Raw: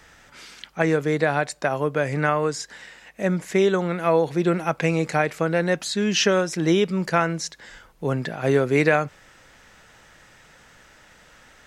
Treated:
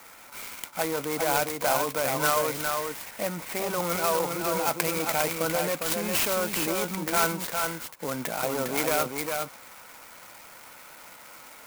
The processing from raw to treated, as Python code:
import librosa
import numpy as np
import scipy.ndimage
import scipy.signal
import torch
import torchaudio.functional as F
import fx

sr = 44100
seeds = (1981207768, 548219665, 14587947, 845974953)

p1 = fx.diode_clip(x, sr, knee_db=-19.5)
p2 = fx.peak_eq(p1, sr, hz=1700.0, db=-12.0, octaves=0.31)
p3 = fx.over_compress(p2, sr, threshold_db=-27.0, ratio=-0.5)
p4 = p2 + (p3 * librosa.db_to_amplitude(1.0))
p5 = fx.cabinet(p4, sr, low_hz=300.0, low_slope=12, high_hz=4900.0, hz=(390.0, 1000.0, 1500.0, 2300.0), db=(-9, 6, 5, 9))
p6 = p5 + fx.echo_single(p5, sr, ms=405, db=-4.5, dry=0)
p7 = fx.clock_jitter(p6, sr, seeds[0], jitter_ms=0.08)
y = p7 * librosa.db_to_amplitude(-5.5)